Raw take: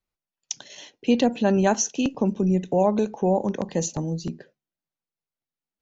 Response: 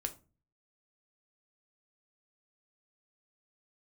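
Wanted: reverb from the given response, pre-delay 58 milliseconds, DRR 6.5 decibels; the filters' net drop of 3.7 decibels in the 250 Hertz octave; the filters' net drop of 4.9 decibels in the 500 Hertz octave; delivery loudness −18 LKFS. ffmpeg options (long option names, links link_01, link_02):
-filter_complex "[0:a]equalizer=frequency=250:width_type=o:gain=-4,equalizer=frequency=500:width_type=o:gain=-5,asplit=2[link_01][link_02];[1:a]atrim=start_sample=2205,adelay=58[link_03];[link_02][link_03]afir=irnorm=-1:irlink=0,volume=-6.5dB[link_04];[link_01][link_04]amix=inputs=2:normalize=0,volume=8.5dB"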